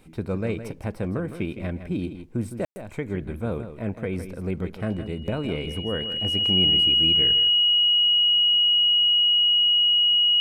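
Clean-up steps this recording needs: notch 2900 Hz, Q 30; room tone fill 2.65–2.76; inverse comb 0.161 s -10.5 dB

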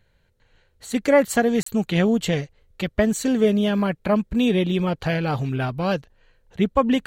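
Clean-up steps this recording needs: interpolate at 1.63, 34 ms

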